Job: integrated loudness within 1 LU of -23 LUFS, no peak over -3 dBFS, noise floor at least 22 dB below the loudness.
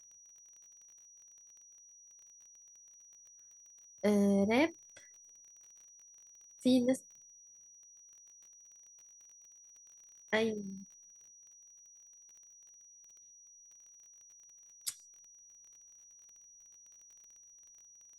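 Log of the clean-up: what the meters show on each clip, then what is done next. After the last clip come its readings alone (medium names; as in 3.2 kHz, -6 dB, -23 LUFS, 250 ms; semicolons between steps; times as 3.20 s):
tick rate 28 per s; steady tone 5.8 kHz; tone level -56 dBFS; loudness -33.0 LUFS; peak level -17.5 dBFS; loudness target -23.0 LUFS
-> de-click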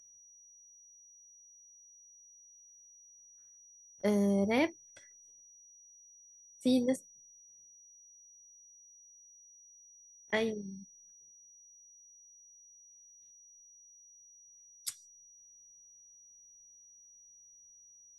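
tick rate 0.11 per s; steady tone 5.8 kHz; tone level -56 dBFS
-> band-stop 5.8 kHz, Q 30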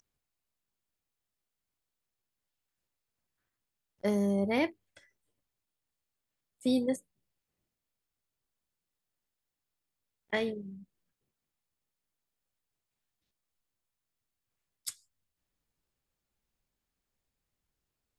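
steady tone not found; loudness -32.5 LUFS; peak level -18.0 dBFS; loudness target -23.0 LUFS
-> trim +9.5 dB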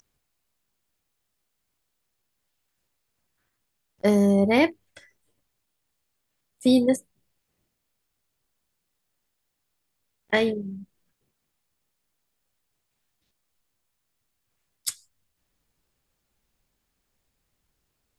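loudness -23.0 LUFS; peak level -8.5 dBFS; noise floor -78 dBFS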